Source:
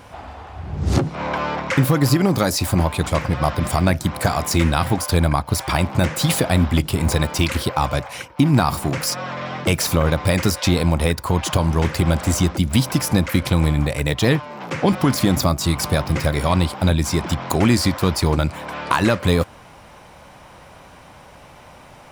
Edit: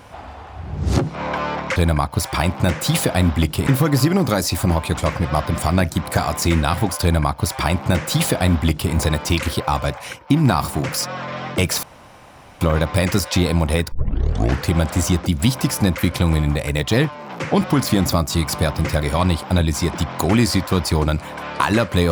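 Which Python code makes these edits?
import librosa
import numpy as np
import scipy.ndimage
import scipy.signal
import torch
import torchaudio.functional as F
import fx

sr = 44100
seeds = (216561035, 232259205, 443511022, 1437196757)

y = fx.edit(x, sr, fx.duplicate(start_s=5.11, length_s=1.91, to_s=1.76),
    fx.insert_room_tone(at_s=9.92, length_s=0.78),
    fx.tape_start(start_s=11.23, length_s=0.75), tone=tone)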